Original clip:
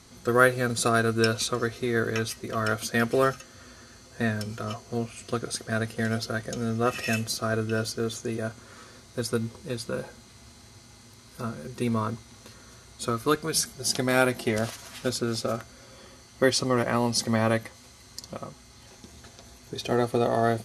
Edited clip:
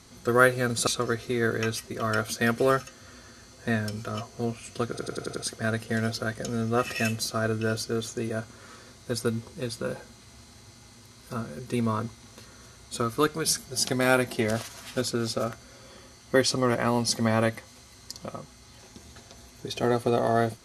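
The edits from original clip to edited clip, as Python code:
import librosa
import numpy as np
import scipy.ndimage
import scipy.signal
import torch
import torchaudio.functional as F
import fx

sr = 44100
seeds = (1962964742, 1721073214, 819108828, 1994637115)

y = fx.edit(x, sr, fx.cut(start_s=0.87, length_s=0.53),
    fx.stutter(start_s=5.43, slice_s=0.09, count=6), tone=tone)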